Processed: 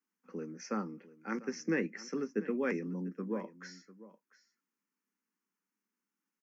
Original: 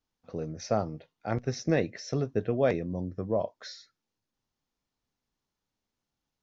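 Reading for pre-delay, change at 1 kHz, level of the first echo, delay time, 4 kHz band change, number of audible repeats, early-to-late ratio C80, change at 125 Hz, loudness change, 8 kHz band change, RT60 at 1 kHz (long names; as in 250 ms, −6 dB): no reverb audible, −8.0 dB, −17.5 dB, 696 ms, −9.0 dB, 1, no reverb audible, −13.0 dB, −6.5 dB, can't be measured, no reverb audible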